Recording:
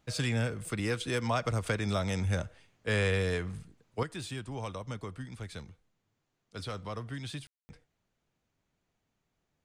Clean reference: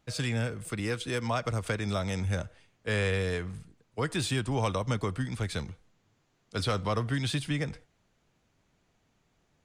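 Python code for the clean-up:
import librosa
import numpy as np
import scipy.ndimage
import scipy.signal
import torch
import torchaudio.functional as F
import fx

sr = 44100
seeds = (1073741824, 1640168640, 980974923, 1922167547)

y = fx.fix_ambience(x, sr, seeds[0], print_start_s=6.01, print_end_s=6.51, start_s=7.47, end_s=7.69)
y = fx.gain(y, sr, db=fx.steps((0.0, 0.0), (4.03, 9.5)))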